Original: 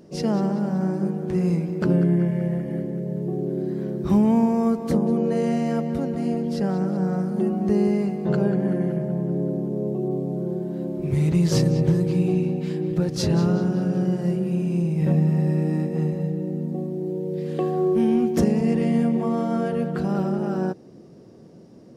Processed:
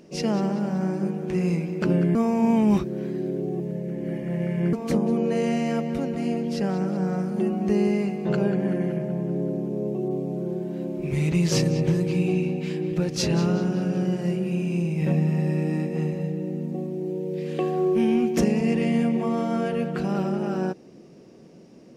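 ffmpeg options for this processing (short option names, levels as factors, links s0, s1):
-filter_complex "[0:a]asplit=3[s0][s1][s2];[s0]atrim=end=2.152[s3];[s1]atrim=start=2.148:end=4.732,asetpts=PTS-STARTPTS,areverse[s4];[s2]atrim=start=4.728[s5];[s3][s4]acrossfade=d=0.004:c1=hsin:c2=hsin[s6];[s6][s5]acrossfade=d=0.004:c1=hsin:c2=hsin,equalizer=f=100:t=o:w=0.67:g=-9,equalizer=f=2500:t=o:w=0.67:g=9,equalizer=f=6300:t=o:w=0.67:g=4,volume=0.891"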